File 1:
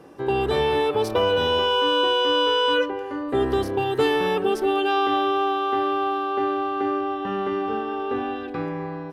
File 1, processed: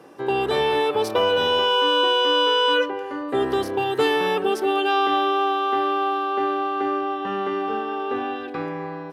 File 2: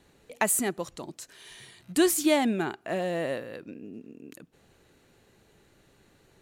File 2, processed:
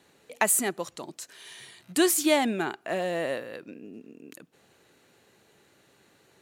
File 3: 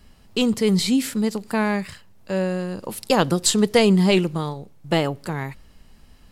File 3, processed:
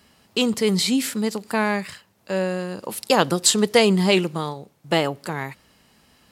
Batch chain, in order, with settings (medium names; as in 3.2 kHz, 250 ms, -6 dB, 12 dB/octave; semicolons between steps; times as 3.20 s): high-pass 100 Hz 12 dB/octave; bass shelf 310 Hz -7 dB; trim +2.5 dB